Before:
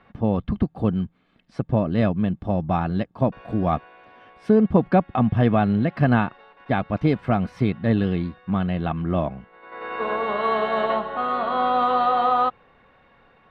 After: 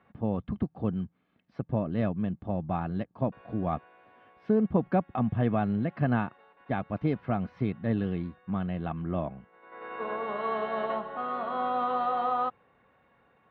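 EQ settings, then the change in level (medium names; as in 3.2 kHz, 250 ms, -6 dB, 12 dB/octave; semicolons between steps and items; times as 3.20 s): high-pass 69 Hz; distance through air 230 m; -7.5 dB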